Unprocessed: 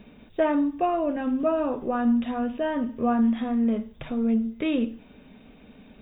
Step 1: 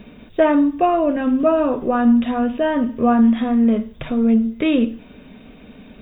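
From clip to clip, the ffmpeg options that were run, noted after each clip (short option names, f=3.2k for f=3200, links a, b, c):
-af "bandreject=f=830:w=12,volume=8dB"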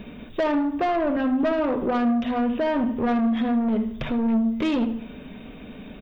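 -filter_complex "[0:a]asplit=2[a][b];[b]acompressor=threshold=-22dB:ratio=6,volume=1.5dB[c];[a][c]amix=inputs=2:normalize=0,asoftclip=type=tanh:threshold=-14dB,asplit=2[d][e];[e]adelay=75,lowpass=f=3k:p=1,volume=-12.5dB,asplit=2[f][g];[g]adelay=75,lowpass=f=3k:p=1,volume=0.48,asplit=2[h][i];[i]adelay=75,lowpass=f=3k:p=1,volume=0.48,asplit=2[j][k];[k]adelay=75,lowpass=f=3k:p=1,volume=0.48,asplit=2[l][m];[m]adelay=75,lowpass=f=3k:p=1,volume=0.48[n];[d][f][h][j][l][n]amix=inputs=6:normalize=0,volume=-5dB"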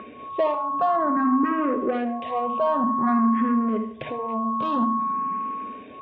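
-filter_complex "[0:a]aeval=exprs='val(0)+0.0631*sin(2*PI*1100*n/s)':c=same,highpass=160,lowpass=2.4k,asplit=2[a][b];[b]afreqshift=0.52[c];[a][c]amix=inputs=2:normalize=1,volume=2dB"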